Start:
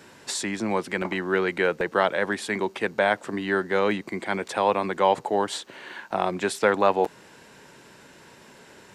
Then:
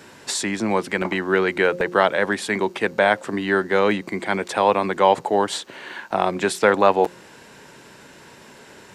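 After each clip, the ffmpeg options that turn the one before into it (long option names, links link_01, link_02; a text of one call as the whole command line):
ffmpeg -i in.wav -af "bandreject=frequency=177.8:width_type=h:width=4,bandreject=frequency=355.6:width_type=h:width=4,bandreject=frequency=533.4:width_type=h:width=4,volume=4.5dB" out.wav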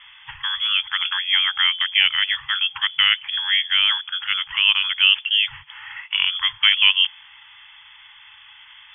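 ffmpeg -i in.wav -af "lowpass=frequency=3100:width_type=q:width=0.5098,lowpass=frequency=3100:width_type=q:width=0.6013,lowpass=frequency=3100:width_type=q:width=0.9,lowpass=frequency=3100:width_type=q:width=2.563,afreqshift=-3600,afftfilt=real='re*(1-between(b*sr/4096,150,800))':imag='im*(1-between(b*sr/4096,150,800))':win_size=4096:overlap=0.75" out.wav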